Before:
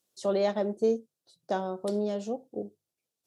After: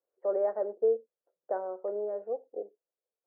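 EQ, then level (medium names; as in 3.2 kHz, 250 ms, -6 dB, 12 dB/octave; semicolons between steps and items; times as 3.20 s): ladder high-pass 420 Hz, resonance 55%; steep low-pass 1.8 kHz 48 dB/octave; distance through air 380 m; +4.0 dB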